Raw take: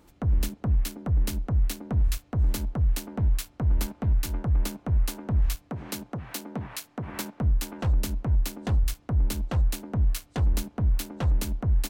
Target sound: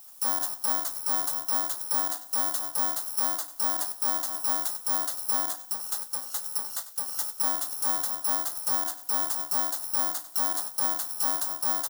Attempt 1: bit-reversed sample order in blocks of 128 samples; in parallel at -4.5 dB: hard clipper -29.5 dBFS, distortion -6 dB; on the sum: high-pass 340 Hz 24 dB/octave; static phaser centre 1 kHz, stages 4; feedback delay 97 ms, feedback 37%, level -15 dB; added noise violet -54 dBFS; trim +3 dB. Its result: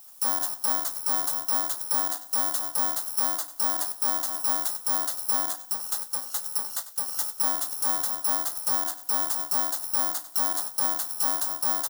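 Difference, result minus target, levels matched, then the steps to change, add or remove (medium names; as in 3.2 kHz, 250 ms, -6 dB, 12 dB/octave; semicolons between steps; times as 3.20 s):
hard clipper: distortion -4 dB
change: hard clipper -41.5 dBFS, distortion -2 dB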